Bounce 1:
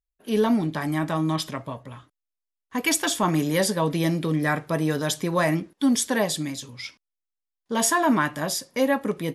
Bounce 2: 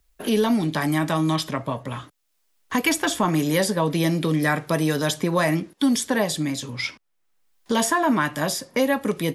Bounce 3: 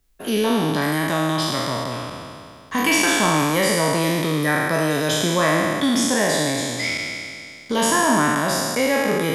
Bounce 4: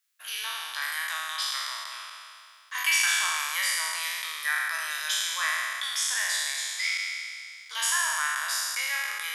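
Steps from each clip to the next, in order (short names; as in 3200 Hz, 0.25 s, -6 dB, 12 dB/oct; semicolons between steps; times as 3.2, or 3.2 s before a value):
three-band squash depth 70%; gain +1.5 dB
spectral trails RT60 2.34 s; gain -2 dB
HPF 1300 Hz 24 dB/oct; gain -3.5 dB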